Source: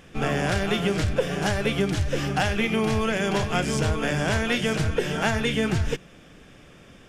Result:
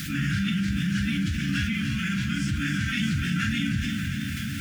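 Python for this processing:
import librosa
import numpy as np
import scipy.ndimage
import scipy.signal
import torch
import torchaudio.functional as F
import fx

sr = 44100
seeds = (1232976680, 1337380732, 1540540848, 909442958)

p1 = scipy.signal.sosfilt(scipy.signal.butter(2, 97.0, 'highpass', fs=sr, output='sos'), x)
p2 = fx.room_early_taps(p1, sr, ms=(46, 61), db=(-8.0, -7.0))
p3 = fx.quant_dither(p2, sr, seeds[0], bits=6, dither='triangular')
p4 = p2 + (p3 * librosa.db_to_amplitude(-9.0))
p5 = fx.tremolo_random(p4, sr, seeds[1], hz=3.5, depth_pct=55)
p6 = scipy.signal.sosfilt(scipy.signal.cheby1(4, 1.0, [280.0, 1400.0], 'bandstop', fs=sr, output='sos'), p5)
p7 = fx.high_shelf(p6, sr, hz=8900.0, db=-7.0)
p8 = p7 + fx.echo_diffused(p7, sr, ms=468, feedback_pct=53, wet_db=-11, dry=0)
p9 = fx.stretch_vocoder_free(p8, sr, factor=0.65)
p10 = fx.low_shelf(p9, sr, hz=370.0, db=5.5)
p11 = fx.env_flatten(p10, sr, amount_pct=70)
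y = p11 * librosa.db_to_amplitude(-4.0)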